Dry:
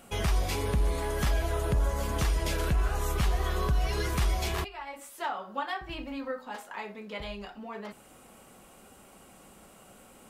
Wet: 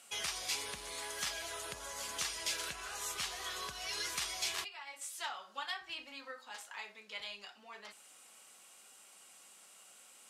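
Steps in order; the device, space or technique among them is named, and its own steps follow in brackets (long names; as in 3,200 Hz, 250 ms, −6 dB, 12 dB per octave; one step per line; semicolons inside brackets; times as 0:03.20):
piezo pickup straight into a mixer (low-pass filter 6,500 Hz 12 dB per octave; first difference)
0:05.01–0:05.71: parametric band 7,100 Hz +3.5 dB 2.3 octaves
level +7 dB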